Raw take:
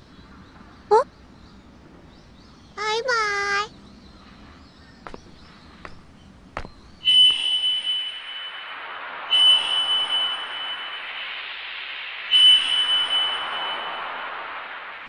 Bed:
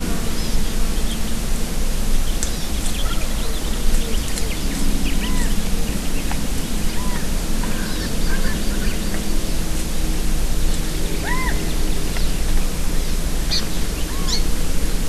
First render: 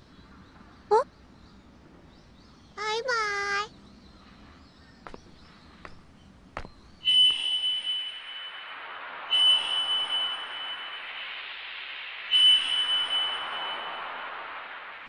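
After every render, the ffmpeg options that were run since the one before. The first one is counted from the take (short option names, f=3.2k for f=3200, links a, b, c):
-af "volume=-5.5dB"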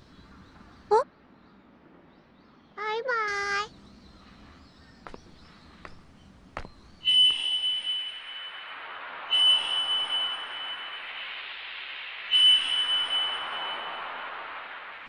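-filter_complex "[0:a]asettb=1/sr,asplit=3[a][b][c];[a]atrim=end=1.024[d];[b]atrim=start=1.02:end=3.28,asetpts=PTS-STARTPTS,afade=t=in:d=0.004:c=qsin,afade=t=out:st=2.256:d=0.004:c=qsin,acrossover=split=160 3500:gain=0.224 1 0.0708[e][f][g];[e][f][g]amix=inputs=3:normalize=0[h];[c]atrim=start=3.276[i];[d][h]acrossfade=d=0.004:c1=hsin:c2=qsin[j];[j][i]acrossfade=d=0.004:c1=qsin:c2=hsin"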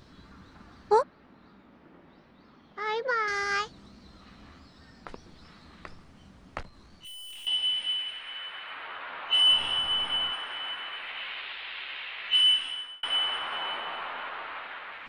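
-filter_complex "[0:a]asettb=1/sr,asplit=3[a][b][c];[a]atrim=end=6.624[d];[b]atrim=start=6.62:end=7.47,asetpts=PTS-STARTPTS,afade=t=in:d=0.004:c=qsin,afade=t=out:st=0.846:d=0.004:c=qsin,aeval=exprs='(tanh(141*val(0)+0.35)-tanh(0.35))/141':c=same[e];[c]atrim=start=7.466[f];[d][e]acrossfade=d=0.004:c1=hsin:c2=qsin[g];[g][f]acrossfade=d=0.004:c1=qsin:c2=hsin,asettb=1/sr,asplit=3[h][i][j];[h]atrim=end=9.484[k];[i]atrim=start=9.48:end=10.33,asetpts=PTS-STARTPTS,afade=t=in:d=0.004:c=qsin,afade=t=out:st=0.846:d=0.004:c=qsin,bass=f=250:g=13,treble=f=4k:g=-3[l];[j]atrim=start=10.326[m];[k][l]acrossfade=d=0.004:c1=hsin:c2=qsin[n];[n][m]acrossfade=d=0.004:c1=qsin:c2=hsin,asplit=2[o][p];[o]atrim=end=13.03,asetpts=PTS-STARTPTS,afade=t=out:st=12.25:d=0.78[q];[p]atrim=start=13.03,asetpts=PTS-STARTPTS,afade=t=in:d=0.004:c=hsin[r];[q][r]concat=n=2:v=0:a=1"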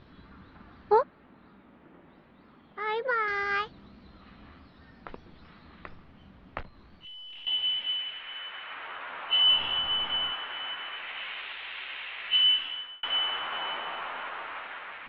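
-af "lowpass=f=3.6k:w=0.5412,lowpass=f=3.6k:w=1.3066"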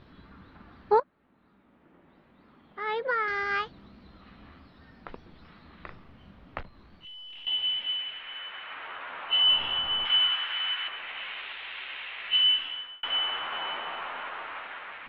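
-filter_complex "[0:a]asettb=1/sr,asplit=3[a][b][c];[a]atrim=end=5.764[d];[b]atrim=start=5.76:end=6.6,asetpts=PTS-STARTPTS,afade=t=in:d=0.004:c=qsin,afade=t=out:st=0.836:d=0.004:c=qsin,asplit=2[e][f];[f]adelay=40,volume=-5dB[g];[e][g]amix=inputs=2:normalize=0,atrim=end_sample=37044[h];[c]atrim=start=6.596[i];[d][h]acrossfade=d=0.004:c1=hsin:c2=qsin[j];[j][i]acrossfade=d=0.004:c1=qsin:c2=hsin,asettb=1/sr,asplit=3[k][l][m];[k]atrim=end=10.054[n];[l]atrim=start=10.05:end=10.88,asetpts=PTS-STARTPTS,afade=t=in:d=0.004:c=qsin,afade=t=out:st=0.826:d=0.004:c=qsin,tiltshelf=f=1.1k:g=-9.5[o];[m]atrim=start=10.876[p];[n][o]acrossfade=d=0.004:c1=hsin:c2=qsin[q];[q][p]acrossfade=d=0.004:c1=qsin:c2=hsin,asplit=2[r][s];[r]atrim=end=1,asetpts=PTS-STARTPTS,afade=t=out:st=0.996:d=0.004:c=hsin:silence=0.177828[t];[s]atrim=start=1,asetpts=PTS-STARTPTS,afade=t=in:d=1.93:silence=0.177828[u];[t][u]concat=n=2:v=0:a=1"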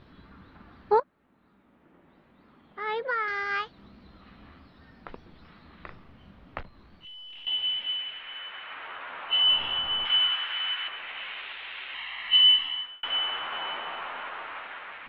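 -filter_complex "[0:a]asettb=1/sr,asplit=3[a][b][c];[a]atrim=end=3.054[d];[b]atrim=start=3.05:end=3.79,asetpts=PTS-STARTPTS,afade=t=in:d=0.004:c=qsin,afade=t=out:st=0.736:d=0.004:c=qsin,lowshelf=f=460:g=-6[e];[c]atrim=start=3.786[f];[d][e]acrossfade=d=0.004:c1=hsin:c2=qsin[g];[g][f]acrossfade=d=0.004:c1=qsin:c2=hsin,asettb=1/sr,asplit=3[h][i][j];[h]atrim=end=11.944[k];[i]atrim=start=11.94:end=12.86,asetpts=PTS-STARTPTS,afade=t=in:d=0.004:c=qsin,afade=t=out:st=0.916:d=0.004:c=qsin,aecho=1:1:1:0.68,atrim=end_sample=40572[l];[j]atrim=start=12.856[m];[k][l]acrossfade=d=0.004:c1=hsin:c2=qsin[n];[n][m]acrossfade=d=0.004:c1=qsin:c2=hsin"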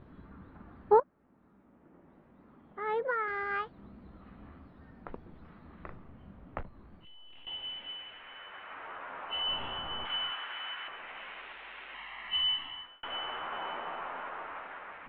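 -af "lowpass=f=1.3k:p=1,aemphasis=mode=reproduction:type=75fm"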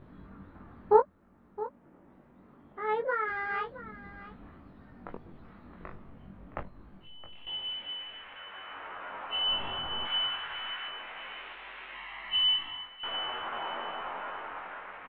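-filter_complex "[0:a]asplit=2[a][b];[b]adelay=21,volume=-4dB[c];[a][c]amix=inputs=2:normalize=0,aecho=1:1:667:0.168"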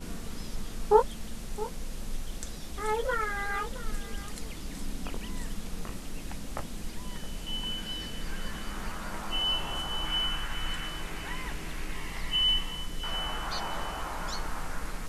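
-filter_complex "[1:a]volume=-17dB[a];[0:a][a]amix=inputs=2:normalize=0"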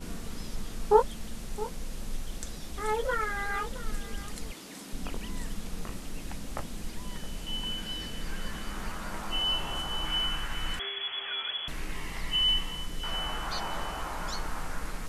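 -filter_complex "[0:a]asettb=1/sr,asplit=3[a][b][c];[a]atrim=end=4.524[d];[b]atrim=start=4.52:end=4.93,asetpts=PTS-STARTPTS,afade=t=in:d=0.004:c=qsin,afade=t=out:st=0.406:d=0.004:c=qsin,highpass=260[e];[c]atrim=start=4.926[f];[d][e]acrossfade=d=0.004:c1=hsin:c2=qsin[g];[g][f]acrossfade=d=0.004:c1=qsin:c2=hsin,asettb=1/sr,asplit=3[h][i][j];[h]atrim=end=10.794[k];[i]atrim=start=10.79:end=11.68,asetpts=PTS-STARTPTS,afade=t=in:d=0.004:c=qsin,afade=t=out:st=0.886:d=0.004:c=qsin,lowpass=f=2.9k:t=q:w=0.5098,lowpass=f=2.9k:t=q:w=0.6013,lowpass=f=2.9k:t=q:w=0.9,lowpass=f=2.9k:t=q:w=2.563,afreqshift=-3400[l];[j]atrim=start=11.676[m];[k][l]acrossfade=d=0.004:c1=hsin:c2=qsin[n];[n][m]acrossfade=d=0.004:c1=qsin:c2=hsin"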